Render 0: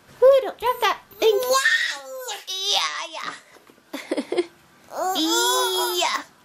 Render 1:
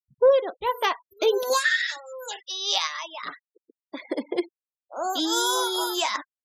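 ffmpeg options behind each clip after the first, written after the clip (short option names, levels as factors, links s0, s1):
-af "afftfilt=real='re*gte(hypot(re,im),0.0251)':imag='im*gte(hypot(re,im),0.0251)':win_size=1024:overlap=0.75,volume=0.668"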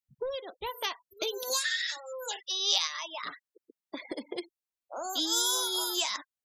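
-filter_complex "[0:a]acrossover=split=120|3000[s0][s1][s2];[s1]acompressor=threshold=0.0158:ratio=5[s3];[s0][s3][s2]amix=inputs=3:normalize=0"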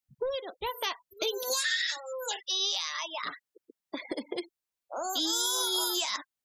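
-af "alimiter=limit=0.0794:level=0:latency=1:release=13,volume=1.33"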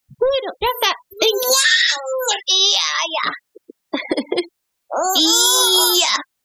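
-af "acontrast=74,volume=2.66"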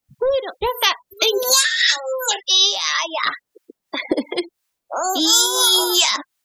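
-filter_complex "[0:a]acrossover=split=850[s0][s1];[s0]aeval=exprs='val(0)*(1-0.7/2+0.7/2*cos(2*PI*2.9*n/s))':c=same[s2];[s1]aeval=exprs='val(0)*(1-0.7/2-0.7/2*cos(2*PI*2.9*n/s))':c=same[s3];[s2][s3]amix=inputs=2:normalize=0,volume=1.19"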